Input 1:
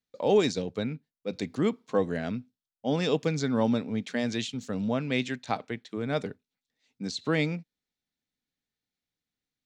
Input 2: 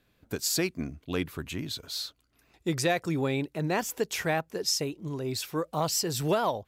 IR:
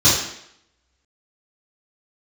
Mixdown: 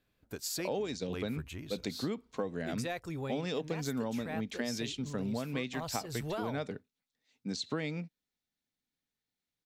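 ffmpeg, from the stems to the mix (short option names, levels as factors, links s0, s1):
-filter_complex "[0:a]adelay=450,volume=0.841[s0];[1:a]asubboost=boost=9:cutoff=73,volume=0.376[s1];[s0][s1]amix=inputs=2:normalize=0,acompressor=threshold=0.0282:ratio=12"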